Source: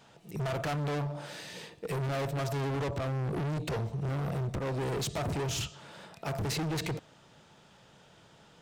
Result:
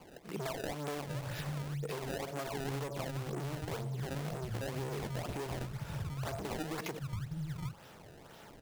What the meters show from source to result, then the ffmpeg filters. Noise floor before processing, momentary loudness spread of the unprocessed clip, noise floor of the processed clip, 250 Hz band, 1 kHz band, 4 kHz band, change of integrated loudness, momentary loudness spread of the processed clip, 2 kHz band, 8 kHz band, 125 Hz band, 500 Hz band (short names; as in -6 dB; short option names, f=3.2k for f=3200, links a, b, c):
-59 dBFS, 9 LU, -55 dBFS, -4.5 dB, -4.5 dB, -6.5 dB, -5.5 dB, 4 LU, -4.0 dB, -6.0 dB, -5.5 dB, -4.5 dB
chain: -filter_complex "[0:a]acrossover=split=170[a][b];[a]adelay=740[c];[c][b]amix=inputs=2:normalize=0,acrusher=samples=23:mix=1:aa=0.000001:lfo=1:lforange=36.8:lforate=2,acompressor=threshold=-41dB:ratio=6,volume=5dB"